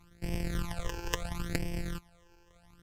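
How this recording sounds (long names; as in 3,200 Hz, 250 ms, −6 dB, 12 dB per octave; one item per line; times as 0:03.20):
a buzz of ramps at a fixed pitch in blocks of 256 samples
phaser sweep stages 12, 0.74 Hz, lowest notch 200–1,300 Hz
Ogg Vorbis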